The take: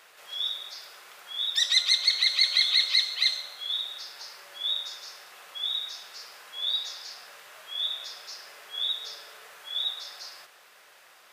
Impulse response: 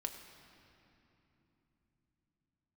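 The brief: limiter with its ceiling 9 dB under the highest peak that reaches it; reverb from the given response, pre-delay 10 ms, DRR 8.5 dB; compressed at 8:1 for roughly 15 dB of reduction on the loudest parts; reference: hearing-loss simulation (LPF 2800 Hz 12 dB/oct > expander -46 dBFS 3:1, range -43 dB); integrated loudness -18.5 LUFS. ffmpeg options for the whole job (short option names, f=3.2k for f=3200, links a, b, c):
-filter_complex "[0:a]acompressor=threshold=-34dB:ratio=8,alimiter=level_in=8dB:limit=-24dB:level=0:latency=1,volume=-8dB,asplit=2[a][b];[1:a]atrim=start_sample=2205,adelay=10[c];[b][c]afir=irnorm=-1:irlink=0,volume=-7.5dB[d];[a][d]amix=inputs=2:normalize=0,lowpass=2.8k,agate=range=-43dB:threshold=-46dB:ratio=3,volume=26.5dB"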